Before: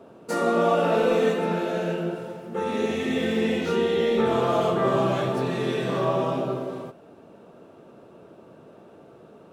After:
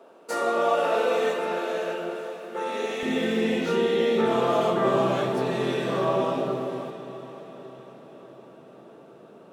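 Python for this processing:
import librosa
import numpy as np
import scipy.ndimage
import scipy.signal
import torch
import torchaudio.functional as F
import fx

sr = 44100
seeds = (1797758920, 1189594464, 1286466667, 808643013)

y = fx.highpass(x, sr, hz=fx.steps((0.0, 450.0), (3.03, 160.0)), slope=12)
y = fx.echo_diffused(y, sr, ms=536, feedback_pct=54, wet_db=-13)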